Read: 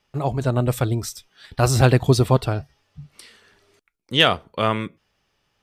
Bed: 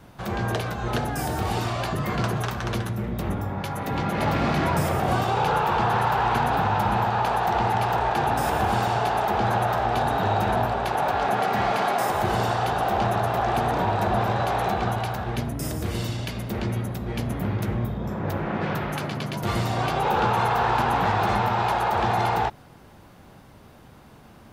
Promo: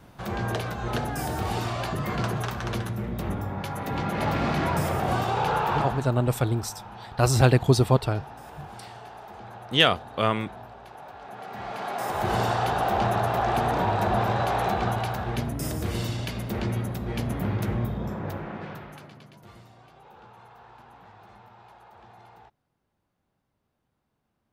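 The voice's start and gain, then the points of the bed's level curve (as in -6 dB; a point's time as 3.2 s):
5.60 s, -3.0 dB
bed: 5.77 s -2.5 dB
6.11 s -20 dB
11.21 s -20 dB
12.35 s -1 dB
18.01 s -1 dB
19.82 s -28.5 dB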